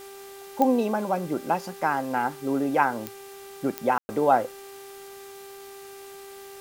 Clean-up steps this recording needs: de-click; de-hum 394.5 Hz, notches 30; room tone fill 3.98–4.09; denoiser 28 dB, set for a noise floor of -43 dBFS

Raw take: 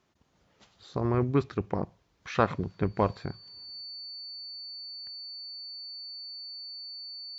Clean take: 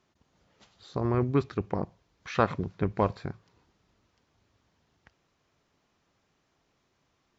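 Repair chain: notch 4500 Hz, Q 30; gain correction +7 dB, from 3.81

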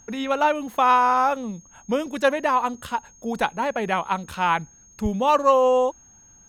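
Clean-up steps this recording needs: notch 6500 Hz, Q 30

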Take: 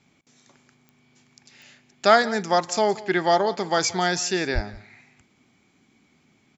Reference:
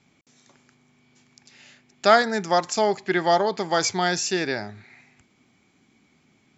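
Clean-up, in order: de-click; 4.54–4.66 HPF 140 Hz 24 dB/oct; inverse comb 0.175 s -19.5 dB

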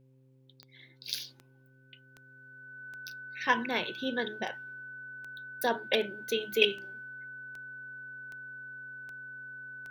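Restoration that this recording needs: de-click; de-hum 131.3 Hz, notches 4; notch 1500 Hz, Q 30

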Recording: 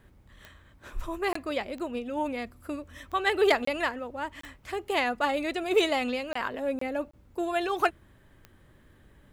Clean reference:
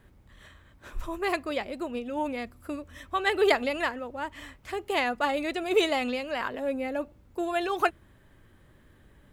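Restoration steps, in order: clip repair -13 dBFS; de-click; interpolate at 1.33/3.65/4.41/6.33/6.79/7.11, 24 ms

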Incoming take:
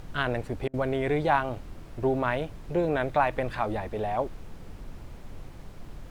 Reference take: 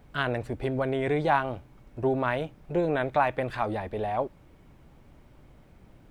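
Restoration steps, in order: interpolate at 0.68, 55 ms; noise print and reduce 12 dB

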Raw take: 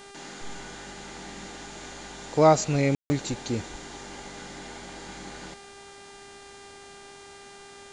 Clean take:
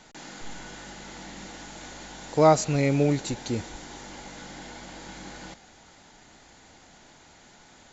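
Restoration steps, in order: de-hum 399 Hz, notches 25; room tone fill 2.95–3.1

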